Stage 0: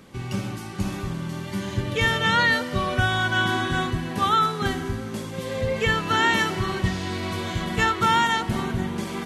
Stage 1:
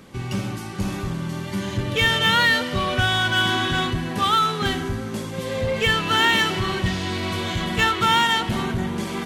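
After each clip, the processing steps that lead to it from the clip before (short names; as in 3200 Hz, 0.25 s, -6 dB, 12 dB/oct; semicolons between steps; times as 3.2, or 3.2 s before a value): dynamic EQ 3100 Hz, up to +7 dB, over -40 dBFS, Q 1.5; in parallel at -9 dB: wavefolder -23.5 dBFS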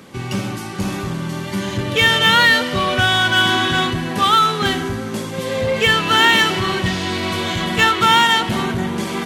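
HPF 140 Hz 6 dB/oct; gain +5.5 dB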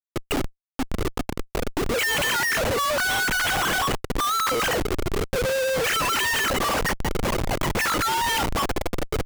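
sine-wave speech; Schmitt trigger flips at -27.5 dBFS; gain -5.5 dB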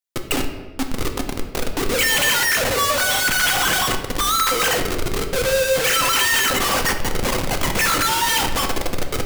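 high shelf 2400 Hz +8 dB; reverb RT60 1.3 s, pre-delay 4 ms, DRR 4 dB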